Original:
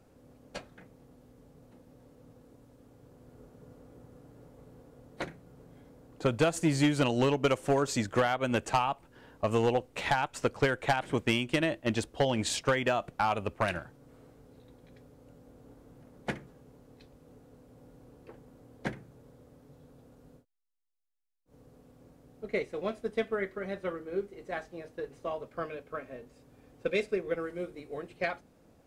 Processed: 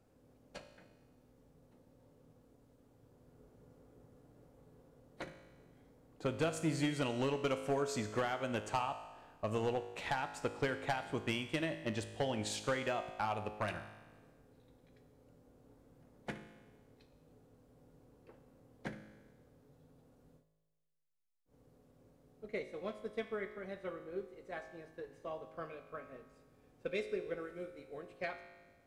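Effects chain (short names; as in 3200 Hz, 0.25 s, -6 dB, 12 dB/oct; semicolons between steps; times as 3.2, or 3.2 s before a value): resonator 53 Hz, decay 1.3 s, harmonics all, mix 70%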